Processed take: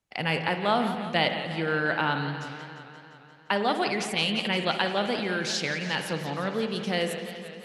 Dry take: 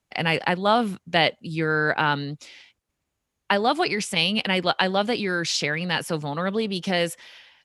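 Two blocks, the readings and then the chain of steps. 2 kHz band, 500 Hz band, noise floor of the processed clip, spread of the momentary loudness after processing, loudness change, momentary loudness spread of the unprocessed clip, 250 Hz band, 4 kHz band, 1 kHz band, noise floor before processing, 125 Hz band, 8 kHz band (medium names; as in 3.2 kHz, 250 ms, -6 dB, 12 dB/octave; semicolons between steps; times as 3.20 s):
-4.0 dB, -3.5 dB, -52 dBFS, 10 LU, -4.0 dB, 6 LU, -3.5 dB, -4.0 dB, -4.0 dB, -80 dBFS, -3.5 dB, -4.5 dB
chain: spring tank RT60 1.4 s, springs 49 ms, chirp 30 ms, DRR 7.5 dB; modulated delay 174 ms, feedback 71%, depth 130 cents, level -12 dB; trim -5 dB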